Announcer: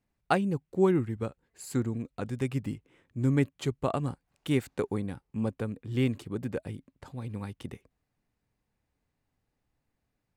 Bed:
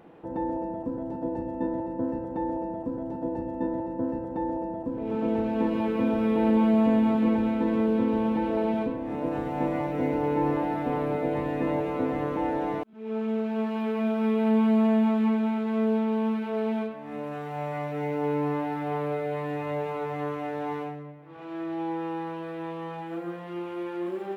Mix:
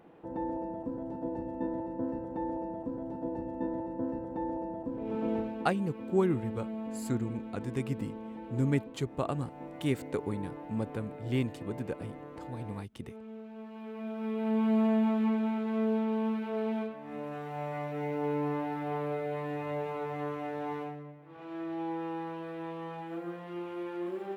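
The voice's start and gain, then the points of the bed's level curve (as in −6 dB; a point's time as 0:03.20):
5.35 s, −3.0 dB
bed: 0:05.37 −5 dB
0:05.72 −17 dB
0:13.63 −17 dB
0:14.75 −4.5 dB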